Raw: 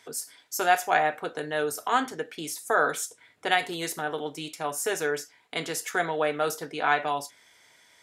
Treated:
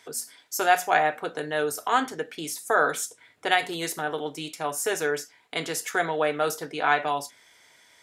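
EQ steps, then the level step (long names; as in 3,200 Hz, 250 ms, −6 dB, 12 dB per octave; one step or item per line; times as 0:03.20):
mains-hum notches 60/120/180/240 Hz
+1.5 dB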